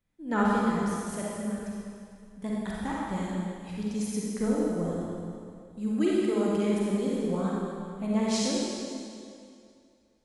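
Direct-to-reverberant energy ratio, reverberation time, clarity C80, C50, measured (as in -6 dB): -5.5 dB, 2.4 s, -2.0 dB, -4.0 dB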